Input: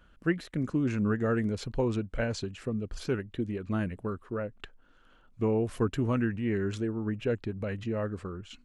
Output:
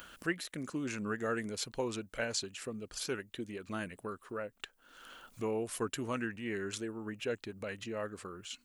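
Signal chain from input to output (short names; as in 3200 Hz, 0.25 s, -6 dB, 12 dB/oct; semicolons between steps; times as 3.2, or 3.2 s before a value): RIAA curve recording; upward compressor, threshold -37 dBFS; gain -3 dB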